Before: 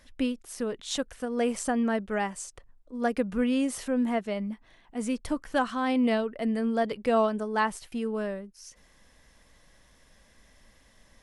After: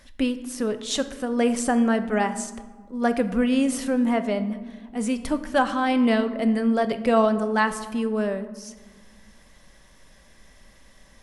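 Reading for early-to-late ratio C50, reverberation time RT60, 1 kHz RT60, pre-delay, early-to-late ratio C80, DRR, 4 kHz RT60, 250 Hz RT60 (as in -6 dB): 12.5 dB, 1.6 s, 1.5 s, 5 ms, 14.5 dB, 9.0 dB, 0.80 s, 2.4 s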